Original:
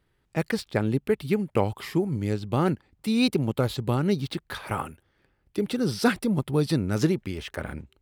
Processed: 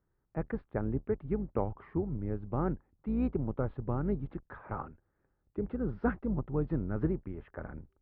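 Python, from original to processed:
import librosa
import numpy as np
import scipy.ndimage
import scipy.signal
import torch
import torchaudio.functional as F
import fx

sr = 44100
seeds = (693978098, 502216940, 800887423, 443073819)

y = fx.octave_divider(x, sr, octaves=2, level_db=-5.0)
y = scipy.signal.sosfilt(scipy.signal.butter(4, 1500.0, 'lowpass', fs=sr, output='sos'), y)
y = y * librosa.db_to_amplitude(-8.5)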